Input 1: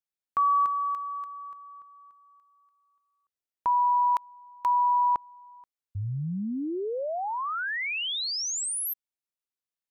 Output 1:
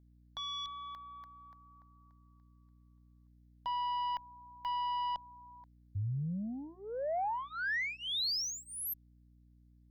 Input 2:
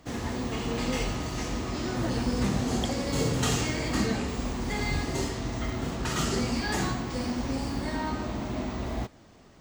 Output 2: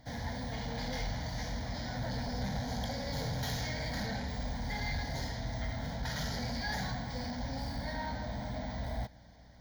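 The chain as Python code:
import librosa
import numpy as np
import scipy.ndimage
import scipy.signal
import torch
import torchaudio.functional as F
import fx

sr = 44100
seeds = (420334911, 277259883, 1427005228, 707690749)

y = fx.cheby_harmonics(x, sr, harmonics=(3, 5, 6), levels_db=(-6, -9, -40), full_scale_db=-13.5)
y = fx.fixed_phaser(y, sr, hz=1800.0, stages=8)
y = fx.add_hum(y, sr, base_hz=60, snr_db=23)
y = F.gain(torch.from_numpy(y), -3.5).numpy()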